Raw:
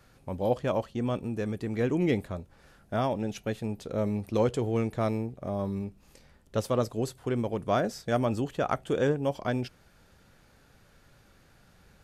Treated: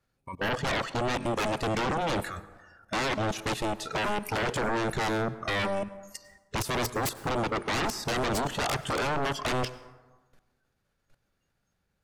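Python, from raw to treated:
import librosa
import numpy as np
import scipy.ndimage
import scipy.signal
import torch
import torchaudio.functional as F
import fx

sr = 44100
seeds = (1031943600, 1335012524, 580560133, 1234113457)

y = fx.noise_reduce_blind(x, sr, reduce_db=25)
y = fx.highpass(y, sr, hz=fx.line((3.96, 310.0), (4.68, 120.0)), slope=24, at=(3.96, 4.68), fade=0.02)
y = fx.level_steps(y, sr, step_db=20)
y = fx.fold_sine(y, sr, drive_db=19, ceiling_db=-25.0)
y = fx.rev_plate(y, sr, seeds[0], rt60_s=1.3, hf_ratio=0.45, predelay_ms=85, drr_db=16.0)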